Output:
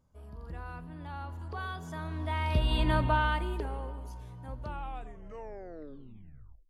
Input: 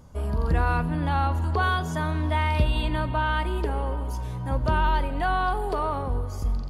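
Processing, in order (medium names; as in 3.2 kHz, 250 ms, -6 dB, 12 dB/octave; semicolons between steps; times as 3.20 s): tape stop on the ending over 2.06 s; Doppler pass-by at 2.98 s, 6 m/s, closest 1.6 m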